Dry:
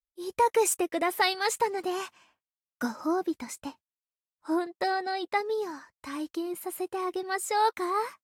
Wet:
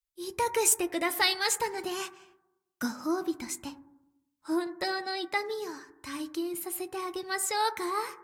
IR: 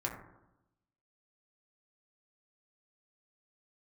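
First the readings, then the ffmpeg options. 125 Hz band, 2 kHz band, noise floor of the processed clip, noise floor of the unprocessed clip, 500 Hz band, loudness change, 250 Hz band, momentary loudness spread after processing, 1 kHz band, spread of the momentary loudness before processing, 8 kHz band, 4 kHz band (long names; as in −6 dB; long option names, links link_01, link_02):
can't be measured, 0.0 dB, −82 dBFS, below −85 dBFS, −4.0 dB, −1.0 dB, −1.0 dB, 14 LU, −4.5 dB, 12 LU, +4.5 dB, +3.5 dB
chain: -filter_complex "[0:a]equalizer=frequency=630:width_type=o:width=2.9:gain=-10.5,asplit=2[link_01][link_02];[1:a]atrim=start_sample=2205[link_03];[link_02][link_03]afir=irnorm=-1:irlink=0,volume=-9dB[link_04];[link_01][link_04]amix=inputs=2:normalize=0,volume=2.5dB"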